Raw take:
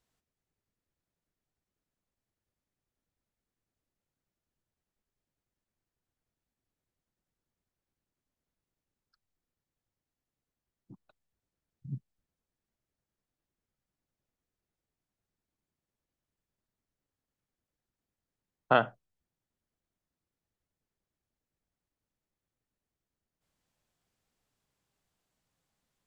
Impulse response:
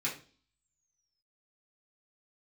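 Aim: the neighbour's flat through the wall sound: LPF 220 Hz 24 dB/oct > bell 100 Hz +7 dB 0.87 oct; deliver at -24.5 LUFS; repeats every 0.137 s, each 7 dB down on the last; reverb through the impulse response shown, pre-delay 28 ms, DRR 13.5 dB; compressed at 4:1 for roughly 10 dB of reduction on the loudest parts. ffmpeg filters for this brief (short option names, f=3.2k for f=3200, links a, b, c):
-filter_complex "[0:a]acompressor=threshold=-29dB:ratio=4,aecho=1:1:137|274|411|548|685:0.447|0.201|0.0905|0.0407|0.0183,asplit=2[a][b];[1:a]atrim=start_sample=2205,adelay=28[c];[b][c]afir=irnorm=-1:irlink=0,volume=-18.5dB[d];[a][d]amix=inputs=2:normalize=0,lowpass=f=220:w=0.5412,lowpass=f=220:w=1.3066,equalizer=f=100:t=o:w=0.87:g=7,volume=20.5dB"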